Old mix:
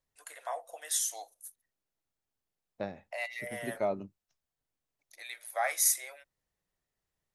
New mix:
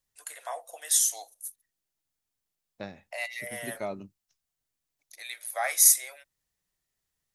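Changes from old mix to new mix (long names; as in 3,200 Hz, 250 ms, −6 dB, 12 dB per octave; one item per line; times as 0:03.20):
second voice: add parametric band 620 Hz −4.5 dB 1.5 octaves
master: add high-shelf EQ 3,100 Hz +9 dB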